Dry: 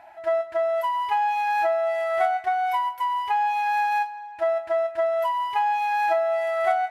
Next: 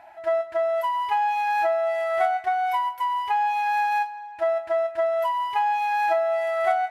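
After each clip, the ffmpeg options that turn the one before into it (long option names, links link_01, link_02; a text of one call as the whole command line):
ffmpeg -i in.wav -af anull out.wav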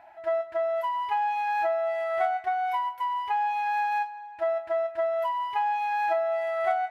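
ffmpeg -i in.wav -af "equalizer=frequency=10000:width_type=o:width=1.8:gain=-7,volume=-3.5dB" out.wav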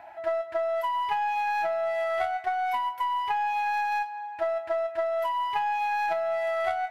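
ffmpeg -i in.wav -filter_complex "[0:a]aeval=exprs='0.188*(cos(1*acos(clip(val(0)/0.188,-1,1)))-cos(1*PI/2))+0.0168*(cos(3*acos(clip(val(0)/0.188,-1,1)))-cos(3*PI/2))+0.00299*(cos(4*acos(clip(val(0)/0.188,-1,1)))-cos(4*PI/2))':channel_layout=same,acrossover=split=360|2500[link_01][link_02][link_03];[link_01]acompressor=threshold=-56dB:ratio=4[link_04];[link_02]acompressor=threshold=-35dB:ratio=4[link_05];[link_03]acompressor=threshold=-47dB:ratio=4[link_06];[link_04][link_05][link_06]amix=inputs=3:normalize=0,volume=8dB" out.wav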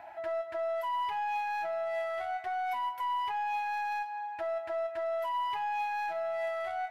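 ffmpeg -i in.wav -af "alimiter=level_in=2dB:limit=-24dB:level=0:latency=1:release=92,volume=-2dB,volume=-1.5dB" out.wav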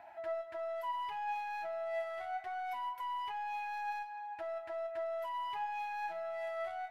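ffmpeg -i in.wav -af "flanger=delay=4.3:depth=3.4:regen=82:speed=0.29:shape=sinusoidal,volume=-1.5dB" out.wav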